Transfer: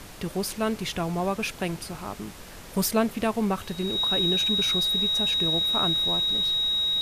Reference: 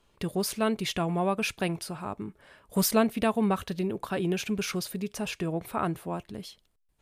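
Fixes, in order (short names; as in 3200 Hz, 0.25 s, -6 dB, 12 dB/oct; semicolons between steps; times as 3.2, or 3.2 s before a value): notch 3800 Hz, Q 30; noise print and reduce 22 dB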